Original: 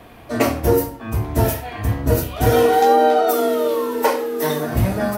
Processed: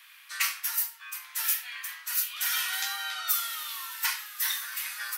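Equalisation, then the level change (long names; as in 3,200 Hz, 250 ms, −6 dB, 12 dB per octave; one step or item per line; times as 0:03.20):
Bessel high-pass filter 2,300 Hz, order 8
+1.5 dB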